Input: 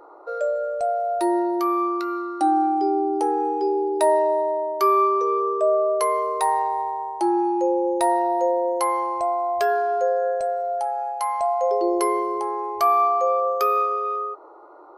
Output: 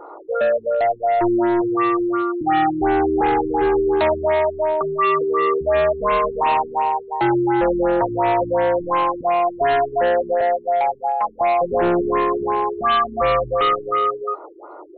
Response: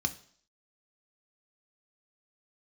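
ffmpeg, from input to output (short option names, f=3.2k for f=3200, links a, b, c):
-af "asoftclip=type=hard:threshold=-23dB,afftfilt=real='re*lt(b*sr/1024,390*pow(4400/390,0.5+0.5*sin(2*PI*2.8*pts/sr)))':imag='im*lt(b*sr/1024,390*pow(4400/390,0.5+0.5*sin(2*PI*2.8*pts/sr)))':win_size=1024:overlap=0.75,volume=8.5dB"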